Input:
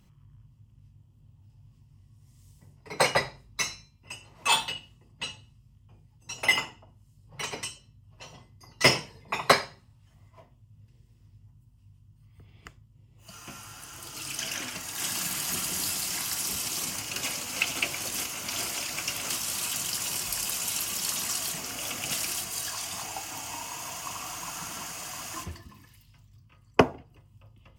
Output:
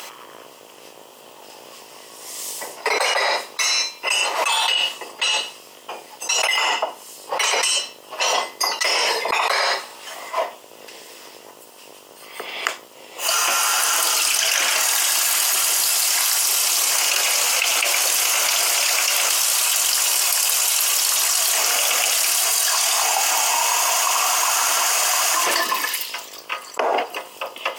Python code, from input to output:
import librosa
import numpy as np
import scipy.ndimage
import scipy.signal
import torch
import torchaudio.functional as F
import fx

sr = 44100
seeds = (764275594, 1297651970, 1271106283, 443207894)

y = fx.octave_divider(x, sr, octaves=2, level_db=-2.0)
y = scipy.signal.sosfilt(scipy.signal.butter(4, 500.0, 'highpass', fs=sr, output='sos'), y)
y = fx.env_flatten(y, sr, amount_pct=100)
y = y * 10.0 ** (-4.0 / 20.0)